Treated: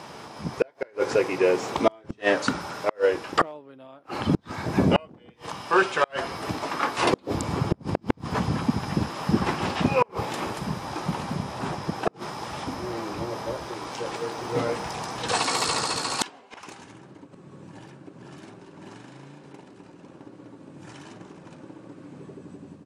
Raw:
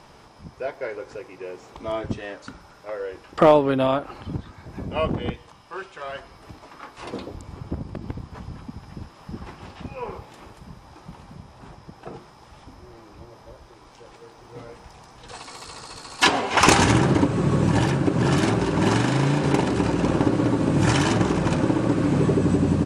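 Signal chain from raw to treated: high-pass 140 Hz 12 dB/octave; level rider gain up to 7 dB; inverted gate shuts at -15 dBFS, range -36 dB; trim +8 dB

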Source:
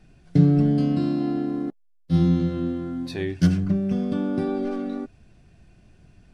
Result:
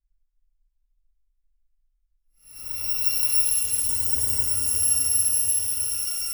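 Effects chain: bit-reversed sample order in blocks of 256 samples; Paulstretch 12×, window 0.05 s, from 1.88 s; trim -4.5 dB

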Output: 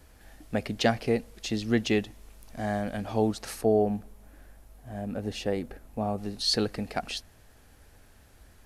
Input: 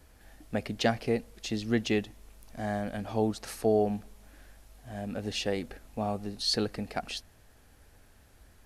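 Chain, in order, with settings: 3.61–6.18 s: peaking EQ 4.3 kHz -8 dB 2.8 oct; trim +2.5 dB

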